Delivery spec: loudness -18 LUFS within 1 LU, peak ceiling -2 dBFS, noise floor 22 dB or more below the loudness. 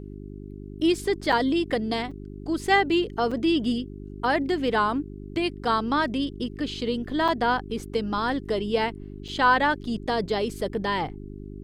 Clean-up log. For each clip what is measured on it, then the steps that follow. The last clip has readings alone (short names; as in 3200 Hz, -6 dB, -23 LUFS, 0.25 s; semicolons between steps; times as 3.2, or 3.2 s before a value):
dropouts 5; longest dropout 5.3 ms; hum 50 Hz; harmonics up to 400 Hz; hum level -37 dBFS; loudness -25.5 LUFS; peak -8.0 dBFS; loudness target -18.0 LUFS
-> interpolate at 1.32/2.11/3.31/7.28/9.28, 5.3 ms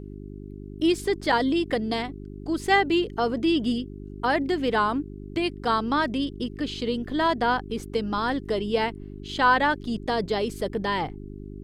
dropouts 0; hum 50 Hz; harmonics up to 400 Hz; hum level -37 dBFS
-> de-hum 50 Hz, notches 8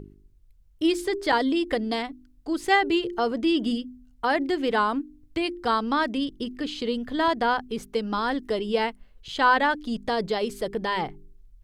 hum none; loudness -26.0 LUFS; peak -8.5 dBFS; loudness target -18.0 LUFS
-> gain +8 dB; limiter -2 dBFS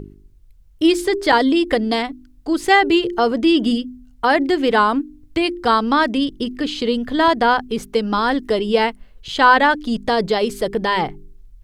loudness -18.0 LUFS; peak -2.0 dBFS; noise floor -48 dBFS